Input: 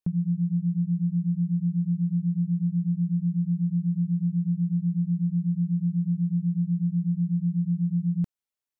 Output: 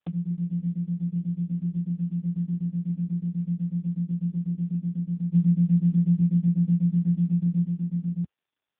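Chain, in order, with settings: HPF 55 Hz 6 dB/oct; 5.33–7.64 bell 92 Hz -> 62 Hz +14 dB 2 oct; gain -1 dB; AMR-NB 5.15 kbps 8000 Hz

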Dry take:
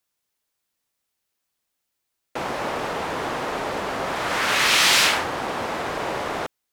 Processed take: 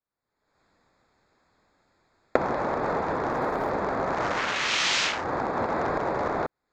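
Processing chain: Wiener smoothing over 15 samples; recorder AGC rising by 49 dB/s; elliptic low-pass 7000 Hz, stop band 70 dB; 3.28–3.69 crackle 130/s -> 490/s -38 dBFS; gain -6.5 dB

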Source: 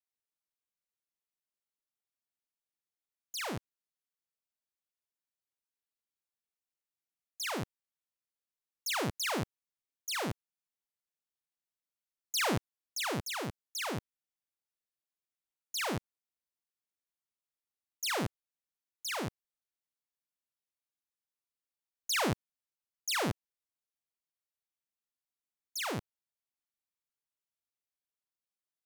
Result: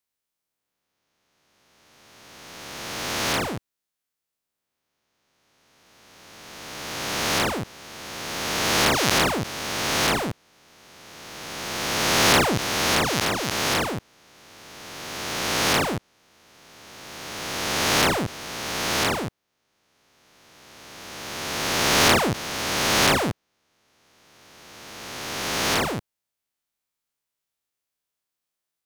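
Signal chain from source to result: spectral swells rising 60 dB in 2.54 s; gain +5.5 dB

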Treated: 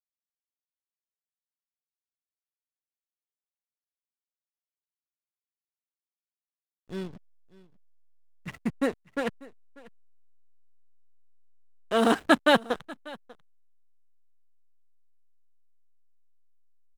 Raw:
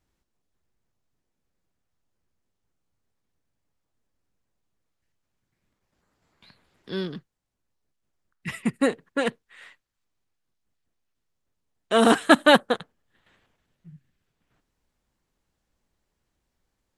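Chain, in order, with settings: backlash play -28 dBFS; echo 0.592 s -21.5 dB; gain -4.5 dB

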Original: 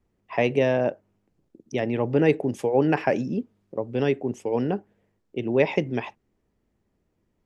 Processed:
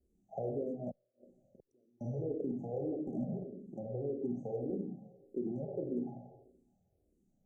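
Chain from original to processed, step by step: treble ducked by the level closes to 440 Hz, closed at -21.5 dBFS; band shelf 2200 Hz -13.5 dB 2.5 oct; limiter -20 dBFS, peak gain reduction 9.5 dB; compressor 6:1, threshold -29 dBFS, peak gain reduction 5.5 dB; Schroeder reverb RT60 1.1 s, combs from 29 ms, DRR 1 dB; one-sided clip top -25.5 dBFS; resonator 180 Hz, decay 0.95 s, mix 70%; 0.91–2.01 flipped gate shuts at -46 dBFS, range -35 dB; brick-wall FIR band-stop 850–5700 Hz; endless phaser -1.7 Hz; gain +7 dB

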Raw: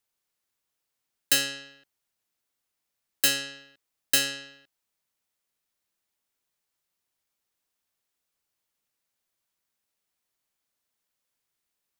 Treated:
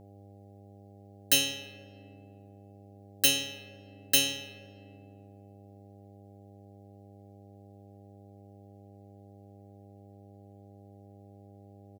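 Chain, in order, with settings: comb 6.9 ms, depth 96%; buzz 100 Hz, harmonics 8, -49 dBFS -4 dB/oct; on a send: reverb RT60 2.3 s, pre-delay 3 ms, DRR 13.5 dB; on the sum: gain -4 dB

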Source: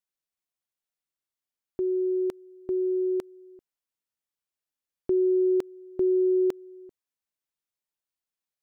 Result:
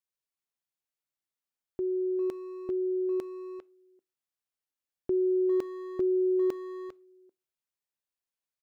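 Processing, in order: speakerphone echo 0.4 s, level -8 dB; on a send at -19.5 dB: reverb RT60 0.35 s, pre-delay 3 ms; on the sum: gain -3.5 dB

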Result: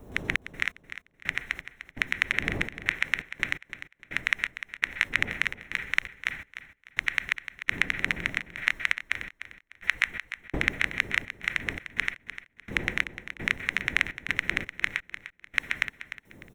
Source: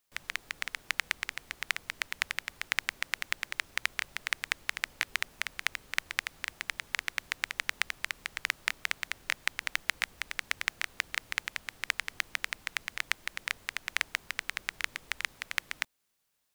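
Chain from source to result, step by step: spectral contrast raised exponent 1.6; wind noise 300 Hz -51 dBFS; on a send at -14 dB: reverb RT60 0.45 s, pre-delay 0.116 s; on the sum: step gate "xx.x...xx..xxxx." 84 bpm -60 dB; in parallel at +1 dB: limiter -16 dBFS, peak gain reduction 8 dB; on the sum: Butterworth band-stop 4700 Hz, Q 4.7; feedback echo 0.3 s, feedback 29%, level -12 dB; gain +2.5 dB

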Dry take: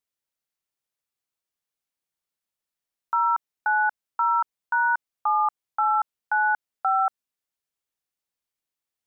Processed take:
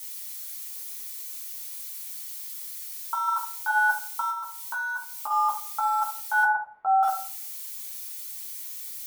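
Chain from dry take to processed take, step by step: switching spikes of -32.5 dBFS; 3.27–3.69 HPF 670 Hz -> 880 Hz 24 dB/oct; 4.3–5.31 compressor 2.5:1, threshold -31 dBFS, peak gain reduction 8 dB; 6.43–7.03 LPF 1200 Hz 24 dB/oct; reverb RT60 0.55 s, pre-delay 4 ms, DRR -4 dB; gain -5 dB

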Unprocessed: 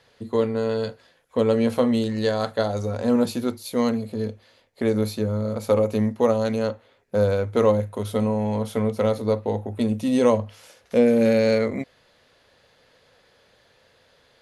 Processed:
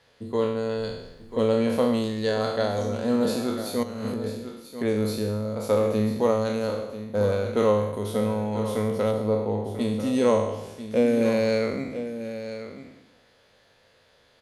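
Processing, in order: spectral trails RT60 0.88 s; 0.77–1.43 added noise brown -47 dBFS; 3.83–4.24 negative-ratio compressor -29 dBFS, ratio -1; 9.11–9.74 high shelf 2200 Hz -10.5 dB; echo 0.991 s -11.5 dB; gain -4 dB

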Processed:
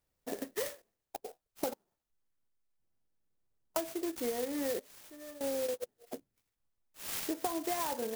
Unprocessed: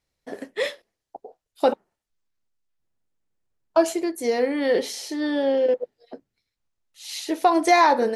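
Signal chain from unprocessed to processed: compressor 10:1, threshold -29 dBFS, peak gain reduction 17 dB; 4.79–5.41 resonator 600 Hz, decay 0.35 s, mix 90%; clock jitter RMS 0.1 ms; gain -3 dB

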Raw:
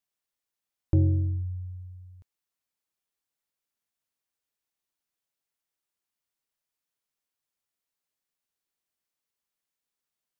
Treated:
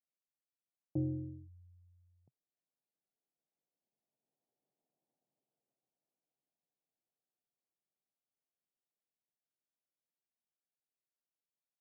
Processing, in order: Doppler pass-by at 4.31, 34 m/s, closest 21 m; wide varispeed 0.881×; elliptic band-pass 130–750 Hz; gain +9 dB

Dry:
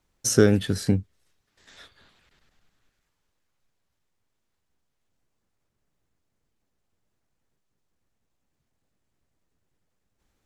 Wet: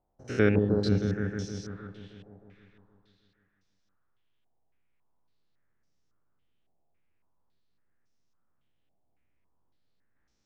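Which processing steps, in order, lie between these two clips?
stepped spectrum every 0.1 s; repeats that get brighter 0.156 s, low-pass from 400 Hz, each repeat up 1 oct, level -3 dB; stepped low-pass 3.6 Hz 740–5600 Hz; gain -5 dB

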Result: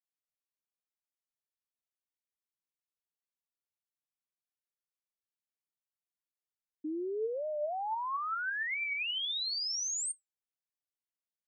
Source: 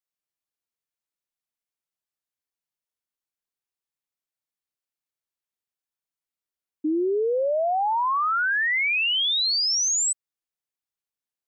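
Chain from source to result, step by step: resonator 220 Hz, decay 0.16 s, harmonics all, mix 50%; record warp 45 rpm, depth 160 cents; gain -7.5 dB

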